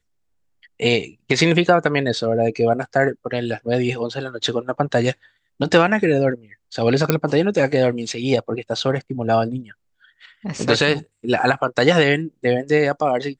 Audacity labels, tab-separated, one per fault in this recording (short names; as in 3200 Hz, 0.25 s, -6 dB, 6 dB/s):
7.100000	7.100000	pop -2 dBFS